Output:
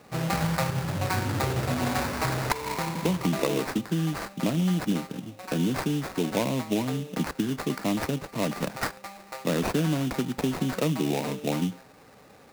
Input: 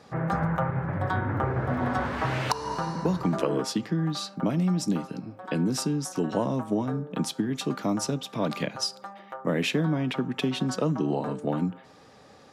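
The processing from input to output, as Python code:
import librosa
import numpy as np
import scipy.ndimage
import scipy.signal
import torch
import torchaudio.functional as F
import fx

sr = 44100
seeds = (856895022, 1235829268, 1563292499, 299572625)

y = fx.sample_hold(x, sr, seeds[0], rate_hz=3200.0, jitter_pct=20)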